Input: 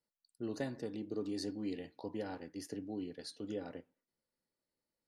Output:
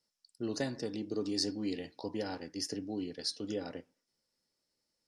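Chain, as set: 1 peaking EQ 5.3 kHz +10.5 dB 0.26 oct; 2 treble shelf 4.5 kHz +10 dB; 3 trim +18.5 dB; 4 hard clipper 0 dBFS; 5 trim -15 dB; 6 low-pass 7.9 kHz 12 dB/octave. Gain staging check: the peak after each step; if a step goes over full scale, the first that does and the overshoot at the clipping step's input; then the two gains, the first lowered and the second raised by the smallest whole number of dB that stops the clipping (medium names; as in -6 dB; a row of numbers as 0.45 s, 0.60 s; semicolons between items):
-25.0 dBFS, -21.0 dBFS, -2.5 dBFS, -2.5 dBFS, -17.5 dBFS, -18.0 dBFS; nothing clips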